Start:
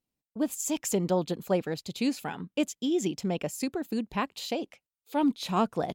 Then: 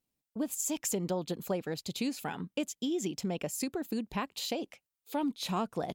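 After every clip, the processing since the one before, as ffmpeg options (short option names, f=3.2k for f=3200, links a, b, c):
-af "highshelf=f=6.4k:g=4.5,acompressor=threshold=-31dB:ratio=3"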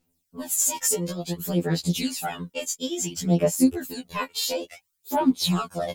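-af "bass=f=250:g=1,treble=f=4k:g=6,aphaser=in_gain=1:out_gain=1:delay=2.2:decay=0.72:speed=0.57:type=sinusoidal,afftfilt=real='re*2*eq(mod(b,4),0)':imag='im*2*eq(mod(b,4),0)':win_size=2048:overlap=0.75,volume=6dB"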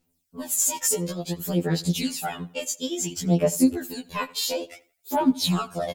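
-filter_complex "[0:a]asplit=2[a][b];[b]adelay=86,lowpass=f=4.3k:p=1,volume=-20.5dB,asplit=2[c][d];[d]adelay=86,lowpass=f=4.3k:p=1,volume=0.36,asplit=2[e][f];[f]adelay=86,lowpass=f=4.3k:p=1,volume=0.36[g];[a][c][e][g]amix=inputs=4:normalize=0"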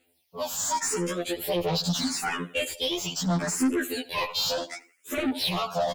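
-filter_complex "[0:a]asplit=2[a][b];[b]highpass=f=720:p=1,volume=30dB,asoftclip=type=tanh:threshold=-6.5dB[c];[a][c]amix=inputs=2:normalize=0,lowpass=f=3.9k:p=1,volume=-6dB,asplit=2[d][e];[e]afreqshift=0.76[f];[d][f]amix=inputs=2:normalize=1,volume=-8.5dB"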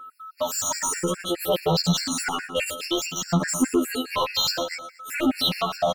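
-af "aeval=exprs='val(0)+0.00631*sin(2*PI*1300*n/s)':c=same,aecho=1:1:117|234|351|468:0.251|0.0904|0.0326|0.0117,afftfilt=real='re*gt(sin(2*PI*4.8*pts/sr)*(1-2*mod(floor(b*sr/1024/1400),2)),0)':imag='im*gt(sin(2*PI*4.8*pts/sr)*(1-2*mod(floor(b*sr/1024/1400),2)),0)':win_size=1024:overlap=0.75,volume=6dB"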